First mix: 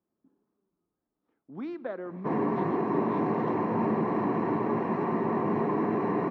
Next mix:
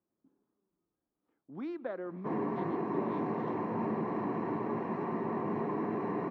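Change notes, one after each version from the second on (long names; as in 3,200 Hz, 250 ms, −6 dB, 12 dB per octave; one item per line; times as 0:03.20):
background −6.5 dB
reverb: off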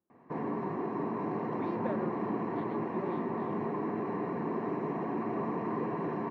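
background: entry −1.95 s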